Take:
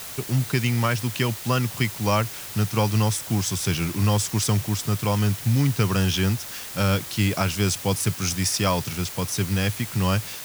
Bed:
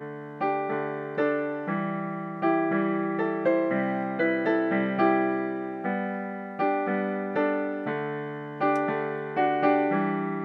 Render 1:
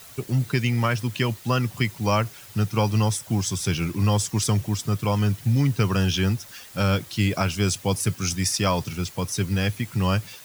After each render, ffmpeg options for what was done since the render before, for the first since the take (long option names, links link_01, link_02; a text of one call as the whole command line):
ffmpeg -i in.wav -af "afftdn=noise_reduction=10:noise_floor=-36" out.wav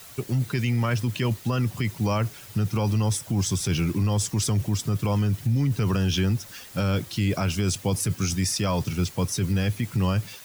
ffmpeg -i in.wav -filter_complex "[0:a]acrossover=split=510|2600[link_01][link_02][link_03];[link_01]dynaudnorm=framelen=410:gausssize=3:maxgain=4dB[link_04];[link_04][link_02][link_03]amix=inputs=3:normalize=0,alimiter=limit=-16.5dB:level=0:latency=1:release=16" out.wav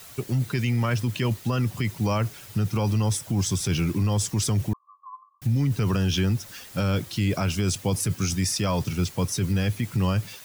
ffmpeg -i in.wav -filter_complex "[0:a]asettb=1/sr,asplit=3[link_01][link_02][link_03];[link_01]atrim=end=4.734[link_04];[link_02]atrim=start=4.73:end=5.42,asetpts=PTS-STARTPTS,afade=type=in:duration=0.004:curve=qsin,afade=type=out:start_time=0.686:duration=0.004:curve=qsin,asuperpass=centerf=1100:order=8:qfactor=7.4[link_05];[link_03]atrim=start=5.416[link_06];[link_04][link_05]acrossfade=duration=0.004:curve1=hsin:curve2=qsin[link_07];[link_07][link_06]acrossfade=duration=0.004:curve1=qsin:curve2=hsin" out.wav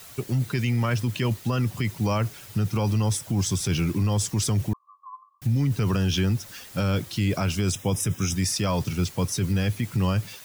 ffmpeg -i in.wav -filter_complex "[0:a]asplit=3[link_01][link_02][link_03];[link_01]afade=type=out:start_time=7.71:duration=0.02[link_04];[link_02]asuperstop=centerf=4400:order=20:qfactor=4.8,afade=type=in:start_time=7.71:duration=0.02,afade=type=out:start_time=8.34:duration=0.02[link_05];[link_03]afade=type=in:start_time=8.34:duration=0.02[link_06];[link_04][link_05][link_06]amix=inputs=3:normalize=0" out.wav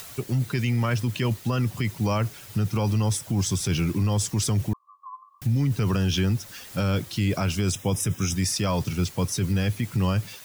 ffmpeg -i in.wav -af "acompressor=mode=upward:threshold=-36dB:ratio=2.5" out.wav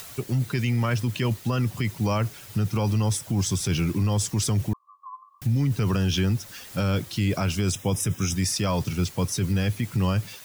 ffmpeg -i in.wav -af anull out.wav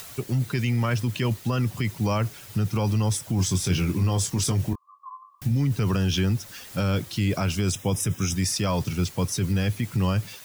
ffmpeg -i in.wav -filter_complex "[0:a]asettb=1/sr,asplit=3[link_01][link_02][link_03];[link_01]atrim=end=3.364[link_04];[link_02]atrim=start=3.36:end=5.51,asetpts=PTS-STARTPTS,afade=type=in:duration=0.004:curve=qsin,afade=type=out:start_time=2.146:duration=0.004:curve=qsin,asplit=2[link_05][link_06];[link_06]adelay=22,volume=-7dB[link_07];[link_05][link_07]amix=inputs=2:normalize=0,atrim=end_sample=94815[link_08];[link_03]atrim=start=5.506[link_09];[link_04][link_08]acrossfade=duration=0.004:curve1=hsin:curve2=qsin[link_10];[link_10][link_09]acrossfade=duration=0.004:curve1=qsin:curve2=hsin" out.wav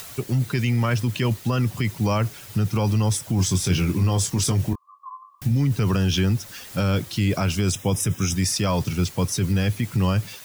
ffmpeg -i in.wav -af "volume=2.5dB" out.wav